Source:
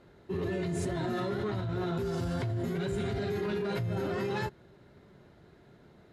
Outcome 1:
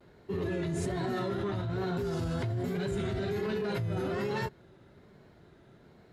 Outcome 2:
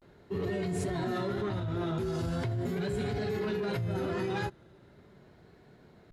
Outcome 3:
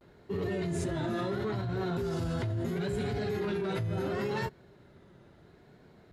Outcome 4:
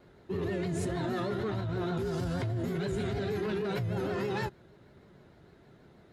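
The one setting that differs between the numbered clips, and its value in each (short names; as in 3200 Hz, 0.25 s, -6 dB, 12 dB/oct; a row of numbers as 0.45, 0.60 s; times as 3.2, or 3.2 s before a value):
vibrato, rate: 1.2, 0.4, 0.73, 6.4 Hz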